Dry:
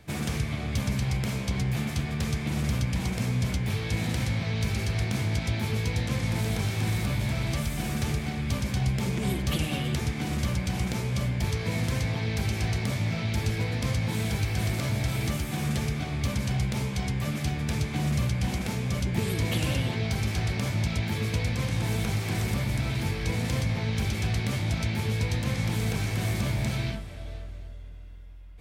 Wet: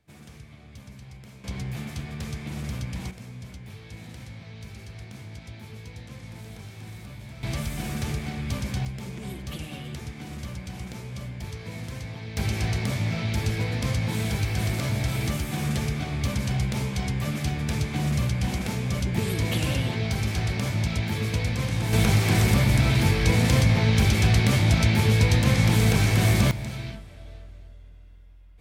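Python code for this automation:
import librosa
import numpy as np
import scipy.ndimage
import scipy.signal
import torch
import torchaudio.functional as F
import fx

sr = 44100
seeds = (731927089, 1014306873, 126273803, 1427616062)

y = fx.gain(x, sr, db=fx.steps((0.0, -17.0), (1.44, -5.0), (3.11, -13.5), (7.43, -1.0), (8.85, -8.0), (12.37, 1.5), (21.93, 8.0), (26.51, -4.5)))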